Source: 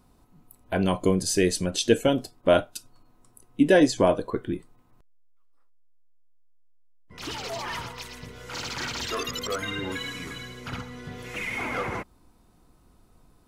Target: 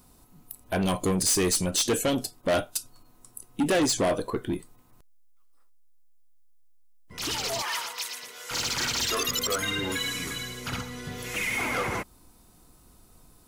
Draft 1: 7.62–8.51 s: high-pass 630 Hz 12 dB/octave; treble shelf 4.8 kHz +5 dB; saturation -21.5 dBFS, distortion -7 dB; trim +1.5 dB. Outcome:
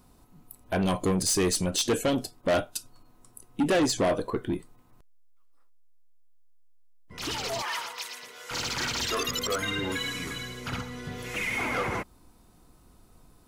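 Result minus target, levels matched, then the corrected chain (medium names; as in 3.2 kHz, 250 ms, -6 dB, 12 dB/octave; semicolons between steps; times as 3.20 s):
8 kHz band -2.5 dB
7.62–8.51 s: high-pass 630 Hz 12 dB/octave; treble shelf 4.8 kHz +13.5 dB; saturation -21.5 dBFS, distortion -7 dB; trim +1.5 dB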